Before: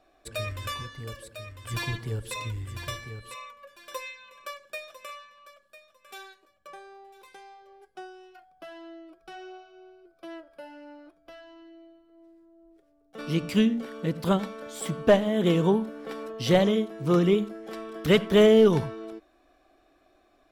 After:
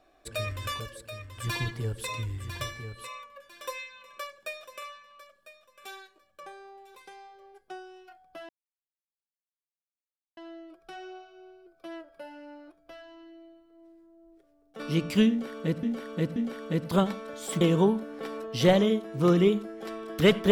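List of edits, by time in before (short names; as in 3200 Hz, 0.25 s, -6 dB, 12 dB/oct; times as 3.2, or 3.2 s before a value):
0.8–1.07 cut
8.76 insert silence 1.88 s
13.69–14.22 loop, 3 plays
14.94–15.47 cut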